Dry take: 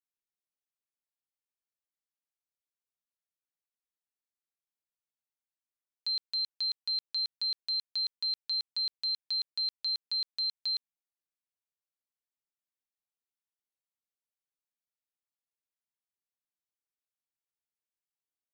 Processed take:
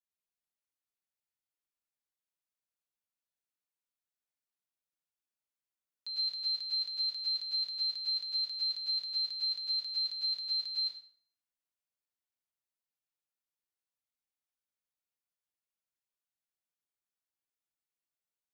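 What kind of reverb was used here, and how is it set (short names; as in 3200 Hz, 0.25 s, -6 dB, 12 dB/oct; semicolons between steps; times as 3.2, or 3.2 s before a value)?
plate-style reverb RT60 0.55 s, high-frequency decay 0.85×, pre-delay 90 ms, DRR -5.5 dB; gain -8.5 dB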